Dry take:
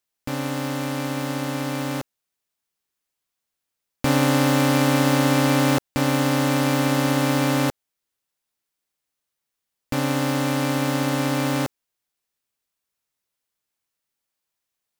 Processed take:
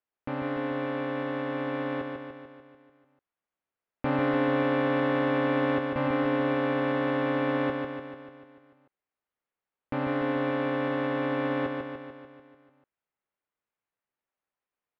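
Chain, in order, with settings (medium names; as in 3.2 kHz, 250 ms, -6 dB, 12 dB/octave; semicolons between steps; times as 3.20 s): tone controls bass -7 dB, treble -11 dB; in parallel at 0 dB: peak limiter -18 dBFS, peak gain reduction 10 dB; on the sum: distance through air 460 m; feedback delay 147 ms, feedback 59%, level -4.5 dB; trim -7 dB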